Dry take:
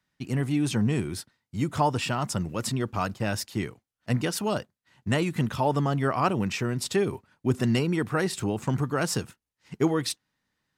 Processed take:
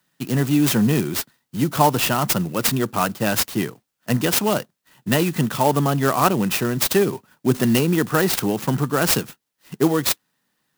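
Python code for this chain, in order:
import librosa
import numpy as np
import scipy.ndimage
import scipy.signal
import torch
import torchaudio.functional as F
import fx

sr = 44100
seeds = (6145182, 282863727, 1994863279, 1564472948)

p1 = scipy.signal.sosfilt(scipy.signal.butter(4, 130.0, 'highpass', fs=sr, output='sos'), x)
p2 = fx.high_shelf(p1, sr, hz=5000.0, db=10.5)
p3 = fx.notch(p2, sr, hz=2200.0, q=6.6)
p4 = fx.rider(p3, sr, range_db=3, speed_s=2.0)
p5 = p3 + (p4 * librosa.db_to_amplitude(2.0))
y = fx.clock_jitter(p5, sr, seeds[0], jitter_ms=0.041)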